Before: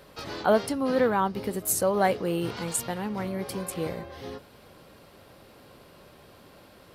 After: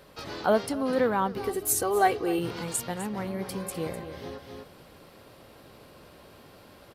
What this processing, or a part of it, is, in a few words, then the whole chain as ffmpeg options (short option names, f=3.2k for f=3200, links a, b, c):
ducked delay: -filter_complex "[0:a]asplit=3[a][b][c];[b]adelay=253,volume=-2dB[d];[c]apad=whole_len=317344[e];[d][e]sidechaincompress=threshold=-36dB:ratio=8:attack=5.3:release=764[f];[a][f]amix=inputs=2:normalize=0,asettb=1/sr,asplit=3[g][h][i];[g]atrim=end=1.374[j];[h]atrim=start=1.37:end=2.39,asetpts=PTS-STARTPTS,afade=t=in:d=0.004:c=qsin,afade=t=out:st=1.016:d=0.004:c=qsin,aecho=1:1:2.6:0.8,atrim=end_sample=44982[k];[i]atrim=start=2.386[l];[j][k]acrossfade=d=0.004:c1=hsin:c2=qsin[m];[m][l]acrossfade=d=0.004:c1=qsin:c2=hsin,volume=-1.5dB"